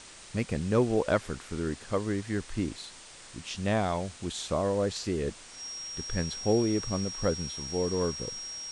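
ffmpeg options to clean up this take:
-af "bandreject=f=5.6k:w=30,afwtdn=0.005"

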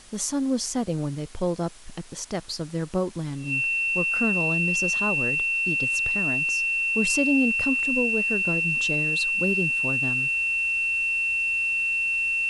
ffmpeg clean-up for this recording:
-af "bandreject=f=2.7k:w=30,afwtdn=0.004"

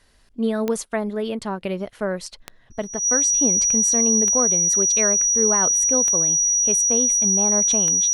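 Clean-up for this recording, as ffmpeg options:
-af "adeclick=t=4,bandreject=f=5.8k:w=30"

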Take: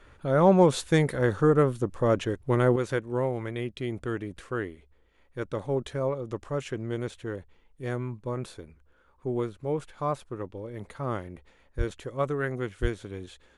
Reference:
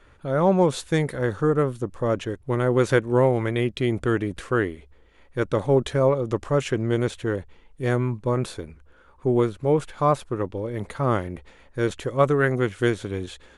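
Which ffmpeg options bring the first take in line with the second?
-filter_complex "[0:a]asplit=3[a][b][c];[a]afade=t=out:st=11.77:d=0.02[d];[b]highpass=f=140:w=0.5412,highpass=f=140:w=1.3066,afade=t=in:st=11.77:d=0.02,afade=t=out:st=11.89:d=0.02[e];[c]afade=t=in:st=11.89:d=0.02[f];[d][e][f]amix=inputs=3:normalize=0,asplit=3[g][h][i];[g]afade=t=out:st=12.81:d=0.02[j];[h]highpass=f=140:w=0.5412,highpass=f=140:w=1.3066,afade=t=in:st=12.81:d=0.02,afade=t=out:st=12.93:d=0.02[k];[i]afade=t=in:st=12.93:d=0.02[l];[j][k][l]amix=inputs=3:normalize=0,asetnsamples=n=441:p=0,asendcmd='2.76 volume volume 9dB',volume=0dB"

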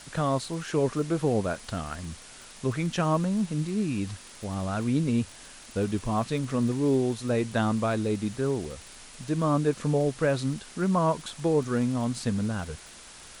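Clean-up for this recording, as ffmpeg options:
-af "adeclick=t=4,afwtdn=0.0056"

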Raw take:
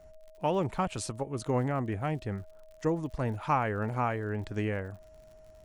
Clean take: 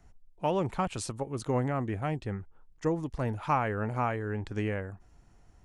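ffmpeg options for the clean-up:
-af "adeclick=t=4,bandreject=f=630:w=30"

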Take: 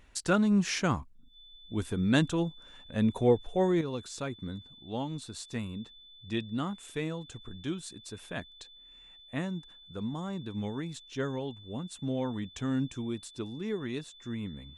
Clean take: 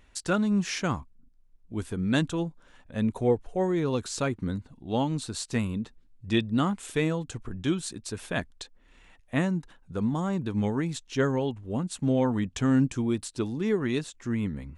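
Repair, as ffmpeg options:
-af "bandreject=f=3.5k:w=30,asetnsamples=n=441:p=0,asendcmd='3.81 volume volume 8dB',volume=0dB"

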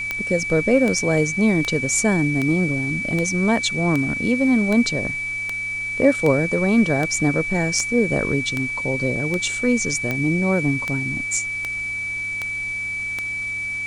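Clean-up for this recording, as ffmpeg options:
-af "adeclick=t=4,bandreject=f=106.4:t=h:w=4,bandreject=f=212.8:t=h:w=4,bandreject=f=319.2:t=h:w=4,bandreject=f=2.3k:w=30,afwtdn=0.0063"

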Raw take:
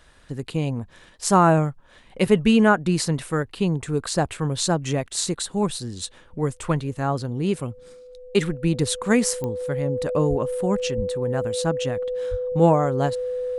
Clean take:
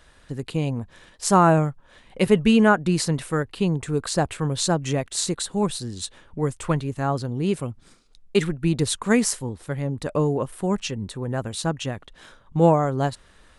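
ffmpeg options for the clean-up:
-filter_complex "[0:a]adeclick=t=4,bandreject=f=500:w=30,asplit=3[a][b][c];[a]afade=t=out:st=10.29:d=0.02[d];[b]highpass=f=140:w=0.5412,highpass=f=140:w=1.3066,afade=t=in:st=10.29:d=0.02,afade=t=out:st=10.41:d=0.02[e];[c]afade=t=in:st=10.41:d=0.02[f];[d][e][f]amix=inputs=3:normalize=0,asplit=3[g][h][i];[g]afade=t=out:st=10.96:d=0.02[j];[h]highpass=f=140:w=0.5412,highpass=f=140:w=1.3066,afade=t=in:st=10.96:d=0.02,afade=t=out:st=11.08:d=0.02[k];[i]afade=t=in:st=11.08:d=0.02[l];[j][k][l]amix=inputs=3:normalize=0,asplit=3[m][n][o];[m]afade=t=out:st=12.3:d=0.02[p];[n]highpass=f=140:w=0.5412,highpass=f=140:w=1.3066,afade=t=in:st=12.3:d=0.02,afade=t=out:st=12.42:d=0.02[q];[o]afade=t=in:st=12.42:d=0.02[r];[p][q][r]amix=inputs=3:normalize=0"

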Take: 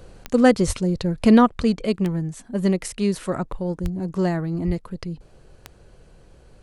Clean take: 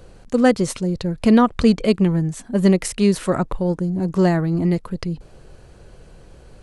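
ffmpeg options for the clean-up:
-filter_complex "[0:a]adeclick=t=4,asplit=3[a][b][c];[a]afade=t=out:st=0.66:d=0.02[d];[b]highpass=f=140:w=0.5412,highpass=f=140:w=1.3066,afade=t=in:st=0.66:d=0.02,afade=t=out:st=0.78:d=0.02[e];[c]afade=t=in:st=0.78:d=0.02[f];[d][e][f]amix=inputs=3:normalize=0,asplit=3[g][h][i];[g]afade=t=out:st=3.82:d=0.02[j];[h]highpass=f=140:w=0.5412,highpass=f=140:w=1.3066,afade=t=in:st=3.82:d=0.02,afade=t=out:st=3.94:d=0.02[k];[i]afade=t=in:st=3.94:d=0.02[l];[j][k][l]amix=inputs=3:normalize=0,asplit=3[m][n][o];[m]afade=t=out:st=4.66:d=0.02[p];[n]highpass=f=140:w=0.5412,highpass=f=140:w=1.3066,afade=t=in:st=4.66:d=0.02,afade=t=out:st=4.78:d=0.02[q];[o]afade=t=in:st=4.78:d=0.02[r];[p][q][r]amix=inputs=3:normalize=0,asetnsamples=n=441:p=0,asendcmd='1.47 volume volume 5.5dB',volume=0dB"

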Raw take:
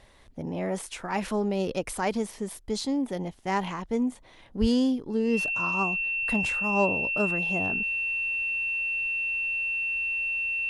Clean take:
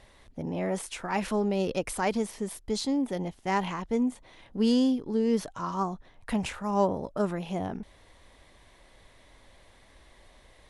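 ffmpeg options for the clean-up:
-filter_complex "[0:a]bandreject=f=2.7k:w=30,asplit=3[a][b][c];[a]afade=t=out:st=4.6:d=0.02[d];[b]highpass=f=140:w=0.5412,highpass=f=140:w=1.3066,afade=t=in:st=4.6:d=0.02,afade=t=out:st=4.72:d=0.02[e];[c]afade=t=in:st=4.72:d=0.02[f];[d][e][f]amix=inputs=3:normalize=0"

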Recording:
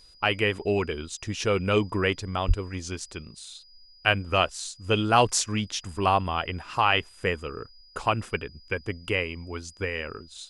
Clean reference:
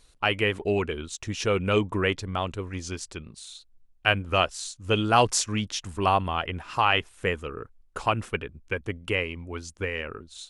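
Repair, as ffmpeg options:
-filter_complex "[0:a]bandreject=f=4.9k:w=30,asplit=3[a][b][c];[a]afade=t=out:st=2.47:d=0.02[d];[b]highpass=f=140:w=0.5412,highpass=f=140:w=1.3066,afade=t=in:st=2.47:d=0.02,afade=t=out:st=2.59:d=0.02[e];[c]afade=t=in:st=2.59:d=0.02[f];[d][e][f]amix=inputs=3:normalize=0"

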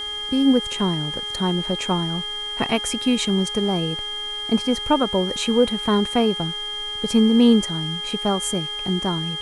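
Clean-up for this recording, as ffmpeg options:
-af "bandreject=f=417.5:t=h:w=4,bandreject=f=835:t=h:w=4,bandreject=f=1.2525k:t=h:w=4,bandreject=f=1.67k:t=h:w=4,bandreject=f=2.0875k:t=h:w=4,bandreject=f=3.2k:w=30,afwtdn=0.005"

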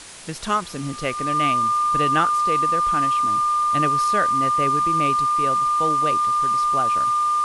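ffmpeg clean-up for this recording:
-af "bandreject=f=1.2k:w=30,afwtdn=0.013"

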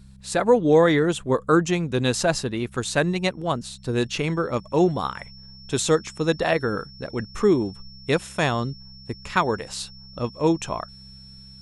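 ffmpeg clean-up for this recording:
-af "bandreject=f=65.7:t=h:w=4,bandreject=f=131.4:t=h:w=4,bandreject=f=197.1:t=h:w=4,bandreject=f=5.4k:w=30"

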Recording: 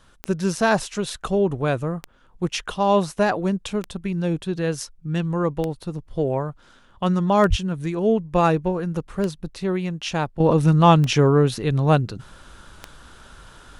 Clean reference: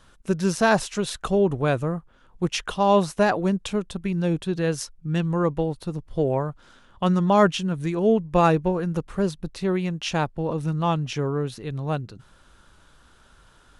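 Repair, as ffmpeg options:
-filter_complex "[0:a]adeclick=t=4,asplit=3[a][b][c];[a]afade=t=out:st=7.49:d=0.02[d];[b]highpass=f=140:w=0.5412,highpass=f=140:w=1.3066,afade=t=in:st=7.49:d=0.02,afade=t=out:st=7.61:d=0.02[e];[c]afade=t=in:st=7.61:d=0.02[f];[d][e][f]amix=inputs=3:normalize=0,asetnsamples=n=441:p=0,asendcmd='10.4 volume volume -9.5dB',volume=0dB"

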